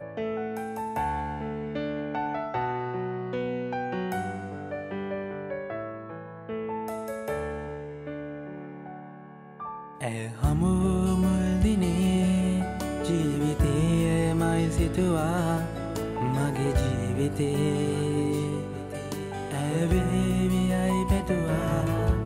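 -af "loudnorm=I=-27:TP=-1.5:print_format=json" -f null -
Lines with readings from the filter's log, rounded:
"input_i" : "-27.6",
"input_tp" : "-12.9",
"input_lra" : "9.2",
"input_thresh" : "-37.9",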